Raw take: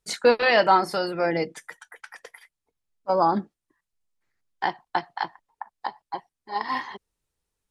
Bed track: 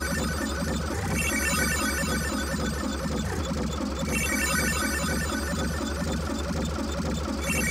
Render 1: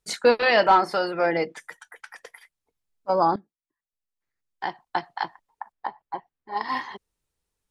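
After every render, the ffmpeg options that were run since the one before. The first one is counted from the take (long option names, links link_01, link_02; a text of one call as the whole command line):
ffmpeg -i in.wav -filter_complex "[0:a]asettb=1/sr,asplit=3[link_01][link_02][link_03];[link_01]atrim=end=0.634[link_04];[link_02]atrim=start=0.63:end=1.6,asetpts=PTS-STARTPTS,afade=type=in:duration=0.004:curve=qsin,afade=type=out:start_time=0.966:duration=0.004:curve=qsin,asplit=2[link_05][link_06];[link_06]highpass=frequency=720:poles=1,volume=10dB,asoftclip=type=tanh:threshold=-6.5dB[link_07];[link_05][link_07]amix=inputs=2:normalize=0,lowpass=frequency=2000:poles=1,volume=-6dB[link_08];[link_03]atrim=start=1.596[link_09];[link_04][link_08]acrossfade=duration=0.004:curve1=hsin:curve2=qsin[link_10];[link_10][link_09]acrossfade=duration=0.004:curve1=qsin:curve2=hsin,asettb=1/sr,asplit=3[link_11][link_12][link_13];[link_11]atrim=end=5.724[link_14];[link_12]atrim=start=5.72:end=6.57,asetpts=PTS-STARTPTS,afade=type=in:duration=0.004:curve=qsin,afade=type=out:start_time=0.846:duration=0.004:curve=qsin,lowpass=2300[link_15];[link_13]atrim=start=6.566[link_16];[link_14][link_15]acrossfade=duration=0.004:curve1=hsin:curve2=qsin[link_17];[link_17][link_16]acrossfade=duration=0.004:curve1=qsin:curve2=hsin,asplit=2[link_18][link_19];[link_18]atrim=end=3.36,asetpts=PTS-STARTPTS,afade=type=out:start_time=3.356:duration=0.004:curve=hsin:silence=0.112202[link_20];[link_19]atrim=start=3.36,asetpts=PTS-STARTPTS,afade=type=in:duration=1.71:curve=qua:silence=0.112202[link_21];[link_20][link_21]concat=n=2:v=0:a=1" out.wav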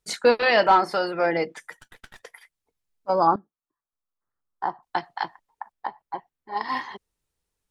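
ffmpeg -i in.wav -filter_complex "[0:a]asettb=1/sr,asplit=3[link_01][link_02][link_03];[link_01]atrim=end=1.814[link_04];[link_02]atrim=start=1.81:end=2.23,asetpts=PTS-STARTPTS,afade=type=in:duration=0.004:curve=qsin,afade=type=out:start_time=0.416:duration=0.004:curve=qsin,aeval=exprs='max(val(0),0)':channel_layout=same[link_05];[link_03]atrim=start=2.226[link_06];[link_04][link_05]acrossfade=duration=0.004:curve1=hsin:curve2=qsin[link_07];[link_07][link_06]acrossfade=duration=0.004:curve1=qsin:curve2=hsin,asettb=1/sr,asplit=3[link_08][link_09][link_10];[link_08]atrim=end=3.274[link_11];[link_09]atrim=start=3.27:end=4.83,asetpts=PTS-STARTPTS,afade=type=in:duration=0.004:curve=qsin,afade=type=out:start_time=1.556:duration=0.004:curve=qsin,highshelf=frequency=1700:width_type=q:width=3:gain=-10.5[link_12];[link_10]atrim=start=4.826[link_13];[link_11][link_12]acrossfade=duration=0.004:curve1=hsin:curve2=qsin[link_14];[link_14][link_13]acrossfade=duration=0.004:curve1=qsin:curve2=hsin" out.wav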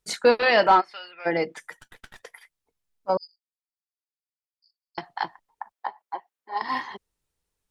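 ffmpeg -i in.wav -filter_complex "[0:a]asplit=3[link_01][link_02][link_03];[link_01]afade=type=out:start_time=0.8:duration=0.02[link_04];[link_02]bandpass=frequency=2700:width_type=q:width=3,afade=type=in:start_time=0.8:duration=0.02,afade=type=out:start_time=1.25:duration=0.02[link_05];[link_03]afade=type=in:start_time=1.25:duration=0.02[link_06];[link_04][link_05][link_06]amix=inputs=3:normalize=0,asettb=1/sr,asplit=3[link_07][link_08][link_09];[link_07]atrim=end=3.174[link_10];[link_08]atrim=start=3.17:end=4.98,asetpts=PTS-STARTPTS,afade=type=in:duration=0.004:curve=qsin,afade=type=out:start_time=1.806:duration=0.004:curve=qsin,asuperpass=centerf=4800:order=12:qfactor=6.1[link_11];[link_09]atrim=start=4.976[link_12];[link_10][link_11]acrossfade=duration=0.004:curve1=hsin:curve2=qsin[link_13];[link_13][link_12]acrossfade=duration=0.004:curve1=qsin:curve2=hsin,asettb=1/sr,asplit=3[link_14][link_15][link_16];[link_14]atrim=end=5.724[link_17];[link_15]atrim=start=5.72:end=6.62,asetpts=PTS-STARTPTS,afade=type=in:duration=0.004:curve=qsin,afade=type=out:start_time=0.896:duration=0.004:curve=qsin,highpass=440[link_18];[link_16]atrim=start=6.616[link_19];[link_17][link_18]acrossfade=duration=0.004:curve1=hsin:curve2=qsin[link_20];[link_20][link_19]acrossfade=duration=0.004:curve1=qsin:curve2=hsin" out.wav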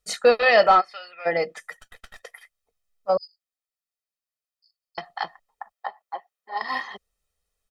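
ffmpeg -i in.wav -af "equalizer=frequency=120:width=2.3:gain=-13,aecho=1:1:1.6:0.61" out.wav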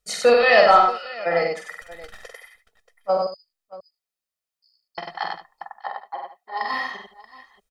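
ffmpeg -i in.wav -af "aecho=1:1:46|95|168|631:0.631|0.668|0.188|0.126" out.wav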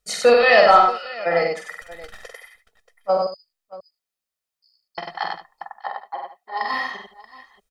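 ffmpeg -i in.wav -af "volume=1.5dB,alimiter=limit=-2dB:level=0:latency=1" out.wav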